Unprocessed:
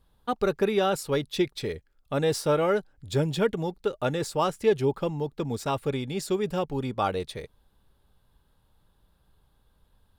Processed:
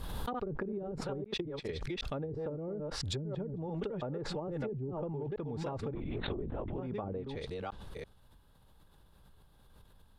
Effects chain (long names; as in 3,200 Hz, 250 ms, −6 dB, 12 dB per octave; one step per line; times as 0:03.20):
delay that plays each chunk backwards 335 ms, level −7 dB
0:01.24–0:01.69: noise gate −27 dBFS, range −48 dB
0:04.02–0:04.48: high-shelf EQ 2,900 Hz −11.5 dB
treble cut that deepens with the level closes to 300 Hz, closed at −20 dBFS
downward compressor 4 to 1, threshold −38 dBFS, peak gain reduction 14.5 dB
0:05.94–0:06.78: linear-prediction vocoder at 8 kHz whisper
background raised ahead of every attack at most 22 dB per second